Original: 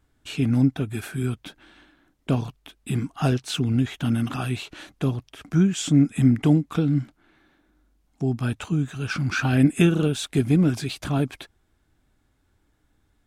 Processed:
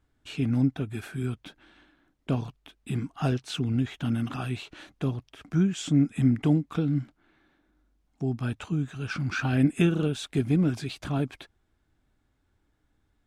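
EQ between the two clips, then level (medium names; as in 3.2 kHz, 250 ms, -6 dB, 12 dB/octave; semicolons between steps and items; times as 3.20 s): treble shelf 8.3 kHz -9 dB; -4.5 dB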